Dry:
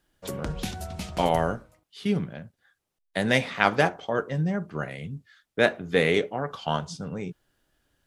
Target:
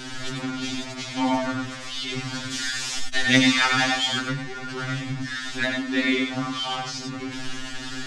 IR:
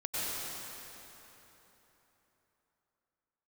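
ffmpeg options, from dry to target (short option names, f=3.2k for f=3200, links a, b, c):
-filter_complex "[0:a]aeval=exprs='val(0)+0.5*0.0501*sgn(val(0))':c=same,lowpass=f=6.6k:w=0.5412,lowpass=f=6.6k:w=1.3066,asettb=1/sr,asplit=3[a][b][c];[a]atrim=end=2.094[d];[b]atrim=start=2.09:end=4.2,asetpts=PTS-STARTPTS,afade=t=in:d=0.004:c=qsin,afade=t=out:st=2.106:d=0.004:c=qsin,highshelf=f=2.4k:g=11[e];[c]atrim=start=4.196[f];[d][e]acrossfade=d=0.004:c1=hsin:c2=qsin[g];[g][f]acrossfade=d=0.004:c1=qsin:c2=hsin,bandreject=f=50:t=h:w=6,bandreject=f=100:t=h:w=6,bandreject=f=150:t=h:w=6,bandreject=f=200:t=h:w=6,bandreject=f=250:t=h:w=6,bandreject=f=300:t=h:w=6,bandreject=f=350:t=h:w=6,bandreject=f=400:t=h:w=6,bandreject=f=450:t=h:w=6[h];[1:a]atrim=start_sample=2205,afade=t=out:st=0.15:d=0.01,atrim=end_sample=7056[i];[h][i]afir=irnorm=-1:irlink=0,asoftclip=type=tanh:threshold=-4.5dB,equalizer=f=125:t=o:w=1:g=-8,equalizer=f=250:t=o:w=1:g=8,equalizer=f=500:t=o:w=1:g=-12,equalizer=f=1k:t=o:w=1:g=-3,afftfilt=real='re*2.45*eq(mod(b,6),0)':imag='im*2.45*eq(mod(b,6),0)':win_size=2048:overlap=0.75,volume=6dB"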